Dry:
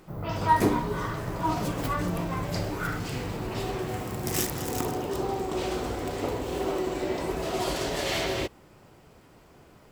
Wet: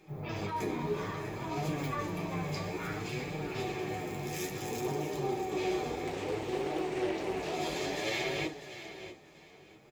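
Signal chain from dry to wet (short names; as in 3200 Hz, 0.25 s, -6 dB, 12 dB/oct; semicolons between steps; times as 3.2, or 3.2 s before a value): limiter -20.5 dBFS, peak gain reduction 10 dB; feedback echo 0.646 s, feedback 23%, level -12 dB; reverb RT60 0.25 s, pre-delay 3 ms, DRR 4 dB; flange 0.59 Hz, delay 6.2 ms, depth 6.5 ms, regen +38%; 6.07–7.54 Doppler distortion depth 0.29 ms; gain -7 dB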